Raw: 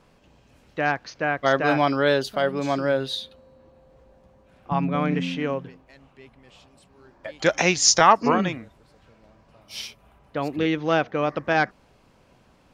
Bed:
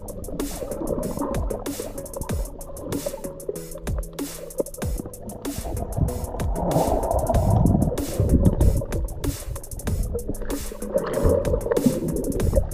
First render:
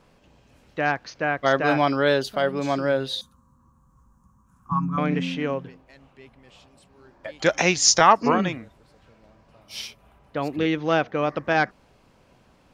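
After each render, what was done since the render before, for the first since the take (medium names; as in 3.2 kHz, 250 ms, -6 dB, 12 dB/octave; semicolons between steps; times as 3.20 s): 3.21–4.98 s: FFT filter 210 Hz 0 dB, 420 Hz -19 dB, 630 Hz -29 dB, 1.1 kHz +7 dB, 2.1 kHz -22 dB, 4.3 kHz -18 dB, 6.5 kHz +5 dB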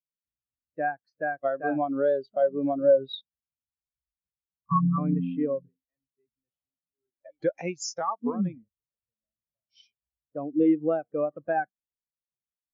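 compression 8:1, threshold -22 dBFS, peak gain reduction 12.5 dB; spectral contrast expander 2.5:1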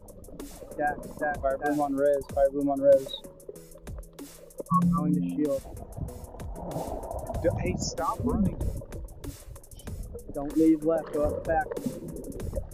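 add bed -13 dB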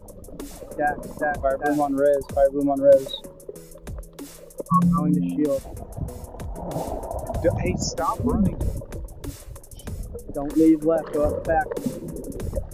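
trim +5 dB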